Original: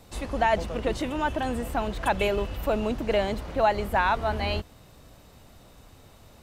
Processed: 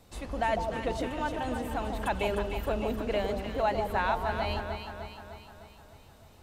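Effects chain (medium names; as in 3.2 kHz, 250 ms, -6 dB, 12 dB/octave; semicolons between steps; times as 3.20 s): echo whose repeats swap between lows and highs 152 ms, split 950 Hz, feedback 74%, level -4 dB; trim -6 dB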